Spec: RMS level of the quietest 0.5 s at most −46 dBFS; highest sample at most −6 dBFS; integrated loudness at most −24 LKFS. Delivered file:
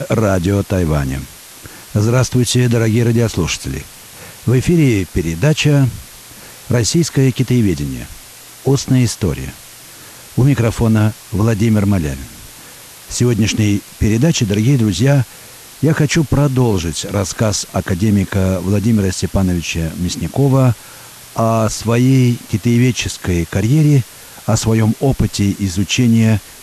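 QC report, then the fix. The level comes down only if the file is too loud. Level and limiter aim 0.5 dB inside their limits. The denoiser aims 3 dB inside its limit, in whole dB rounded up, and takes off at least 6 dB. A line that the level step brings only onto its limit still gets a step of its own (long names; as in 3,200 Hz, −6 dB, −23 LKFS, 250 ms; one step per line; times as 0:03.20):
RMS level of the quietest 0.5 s −37 dBFS: out of spec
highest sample −4.0 dBFS: out of spec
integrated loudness −15.0 LKFS: out of spec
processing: level −9.5 dB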